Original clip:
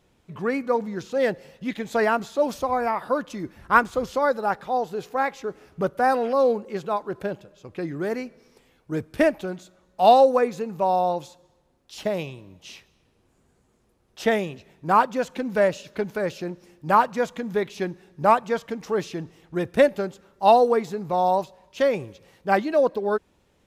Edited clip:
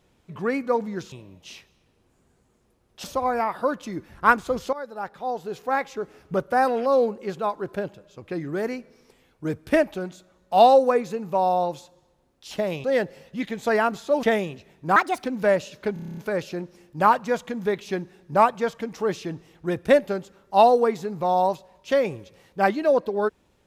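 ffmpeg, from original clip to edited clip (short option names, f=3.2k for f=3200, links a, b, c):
-filter_complex "[0:a]asplit=16[a][b][c][d][e][f][g][h][i][j][k][l][m][n][o][p];[a]atrim=end=1.122[q];[b]atrim=start=12.308:end=14.232[r];[c]atrim=start=2.508:end=4.2,asetpts=PTS-STARTPTS,afade=t=out:st=1.688:d=0.004:c=hsin:silence=0.149624[s];[d]atrim=start=4.2:end=12.312,asetpts=PTS-STARTPTS,afade=t=in:d=1:silence=0.149624[t];[e]atrim=start=1.118:end=2.512[u];[f]atrim=start=14.228:end=14.964[v];[g]atrim=start=14.96:end=15.37,asetpts=PTS-STARTPTS,asetrate=63945,aresample=44100[w];[h]atrim=start=15.366:end=16.092[x];[i]atrim=start=16.058:end=16.092[y];[j]atrim=start=16.058:end=16.092[z];[k]atrim=start=16.058:end=16.092[aa];[l]atrim=start=16.058:end=16.092[ab];[m]atrim=start=16.058:end=16.092[ac];[n]atrim=start=16.058:end=16.092[ad];[o]atrim=start=16.058:end=16.092[ae];[p]atrim=start=16.058[af];[q][r]acrossfade=d=0.004:c1=hsin:c2=hsin[ag];[s][t]concat=n=2:v=0:a=1[ah];[ag][ah]acrossfade=d=0.004:c1=hsin:c2=hsin[ai];[ai][u]acrossfade=d=0.004:c1=hsin:c2=hsin[aj];[aj][v]acrossfade=d=0.004:c1=hsin:c2=hsin[ak];[ak][w]acrossfade=d=0.004:c1=hsin:c2=hsin[al];[al][x]acrossfade=d=0.004:c1=hsin:c2=hsin[am];[am][y]acrossfade=d=0.004:c1=hsin:c2=hsin[an];[an][z]acrossfade=d=0.004:c1=hsin:c2=hsin[ao];[ao][aa]acrossfade=d=0.004:c1=hsin:c2=hsin[ap];[ap][ab]acrossfade=d=0.004:c1=hsin:c2=hsin[aq];[aq][ac]acrossfade=d=0.004:c1=hsin:c2=hsin[ar];[ar][ad]acrossfade=d=0.004:c1=hsin:c2=hsin[as];[as][ae]acrossfade=d=0.004:c1=hsin:c2=hsin[at];[at][af]acrossfade=d=0.004:c1=hsin:c2=hsin"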